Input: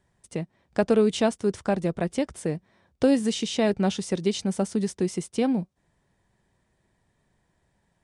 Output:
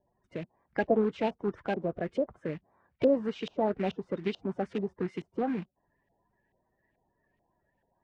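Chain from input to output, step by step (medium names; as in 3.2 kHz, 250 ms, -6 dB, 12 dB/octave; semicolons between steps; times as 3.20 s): coarse spectral quantiser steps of 30 dB; short-mantissa float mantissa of 2-bit; LFO low-pass saw up 2.3 Hz 610–2900 Hz; trim -7 dB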